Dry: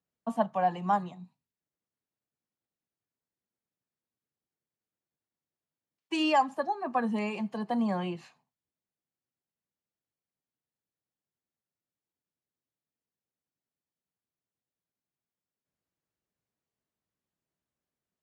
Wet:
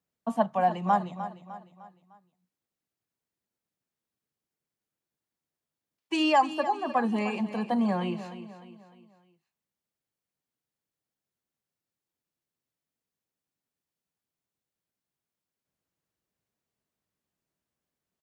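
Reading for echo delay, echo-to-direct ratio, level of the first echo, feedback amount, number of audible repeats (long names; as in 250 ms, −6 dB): 303 ms, −11.5 dB, −12.5 dB, 44%, 4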